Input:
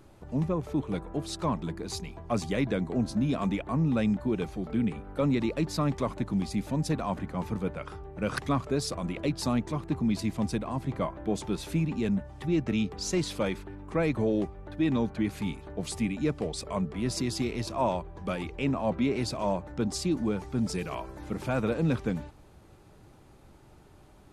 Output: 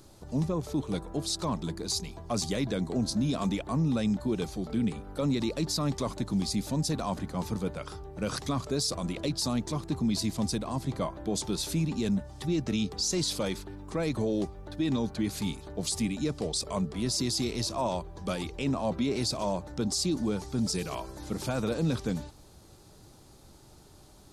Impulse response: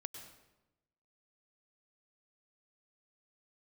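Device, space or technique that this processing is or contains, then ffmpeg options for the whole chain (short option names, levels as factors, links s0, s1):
over-bright horn tweeter: -af "highshelf=f=3300:t=q:w=1.5:g=9,alimiter=limit=0.0944:level=0:latency=1:release=23"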